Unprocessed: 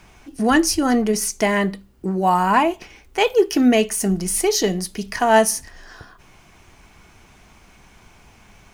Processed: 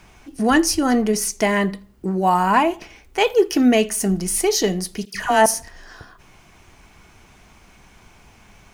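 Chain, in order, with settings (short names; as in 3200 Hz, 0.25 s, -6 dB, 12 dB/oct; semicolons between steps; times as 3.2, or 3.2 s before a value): 5.05–5.46 dispersion lows, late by 94 ms, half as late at 1400 Hz; tape echo 82 ms, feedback 36%, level -22 dB, low-pass 2400 Hz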